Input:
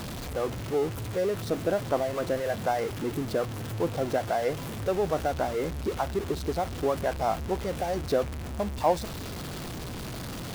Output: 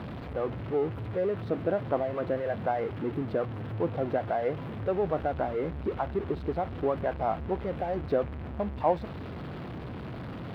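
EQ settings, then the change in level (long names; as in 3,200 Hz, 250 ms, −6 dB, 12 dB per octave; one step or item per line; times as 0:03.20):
high-pass filter 68 Hz
high-frequency loss of the air 470 metres
0.0 dB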